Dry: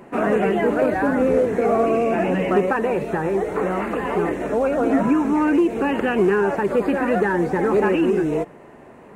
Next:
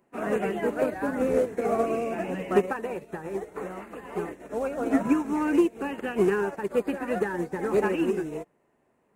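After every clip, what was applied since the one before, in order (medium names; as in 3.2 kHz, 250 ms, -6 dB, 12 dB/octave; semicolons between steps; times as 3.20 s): treble shelf 5.6 kHz +11 dB; upward expansion 2.5:1, over -29 dBFS; trim -1.5 dB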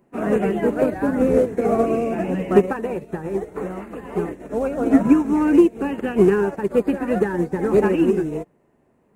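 bass shelf 430 Hz +10 dB; trim +2 dB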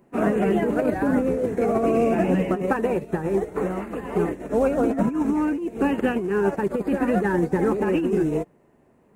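compressor with a negative ratio -21 dBFS, ratio -1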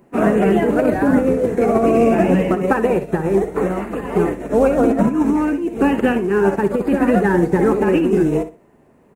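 feedback delay 61 ms, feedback 23%, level -12 dB; trim +6 dB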